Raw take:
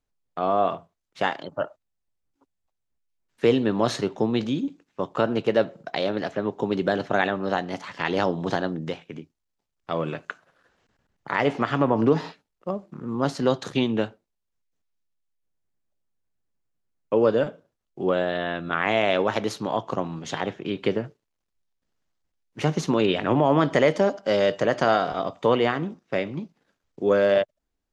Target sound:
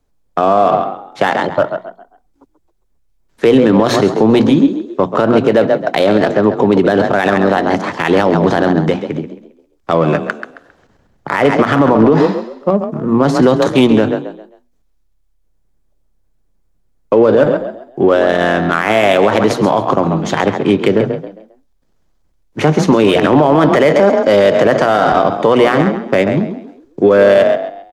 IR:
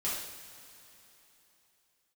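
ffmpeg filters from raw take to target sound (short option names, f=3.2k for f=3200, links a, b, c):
-filter_complex "[0:a]bandreject=f=2.8k:w=27,asplit=5[a][b][c][d][e];[b]adelay=134,afreqshift=34,volume=-10.5dB[f];[c]adelay=268,afreqshift=68,volume=-19.9dB[g];[d]adelay=402,afreqshift=102,volume=-29.2dB[h];[e]adelay=536,afreqshift=136,volume=-38.6dB[i];[a][f][g][h][i]amix=inputs=5:normalize=0,acrossover=split=180|1400[j][k][l];[j]asoftclip=type=tanh:threshold=-32.5dB[m];[m][k][l]amix=inputs=3:normalize=0,bandreject=f=60:t=h:w=6,bandreject=f=120:t=h:w=6,bandreject=f=180:t=h:w=6,bandreject=f=240:t=h:w=6,asplit=2[n][o];[o]adynamicsmooth=sensitivity=3.5:basefreq=1.3k,volume=2dB[p];[n][p]amix=inputs=2:normalize=0,alimiter=level_in=11.5dB:limit=-1dB:release=50:level=0:latency=1" -ar 44100 -c:a libmp3lame -b:a 128k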